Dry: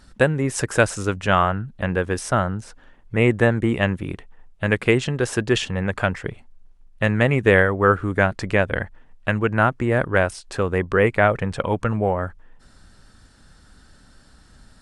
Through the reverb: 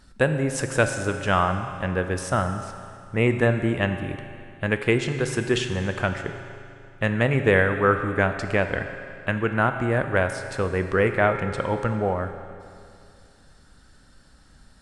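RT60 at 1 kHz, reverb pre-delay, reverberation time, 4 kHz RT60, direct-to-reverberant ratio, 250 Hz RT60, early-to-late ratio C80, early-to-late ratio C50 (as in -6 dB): 2.5 s, 21 ms, 2.5 s, 2.3 s, 7.0 dB, 2.5 s, 8.5 dB, 8.0 dB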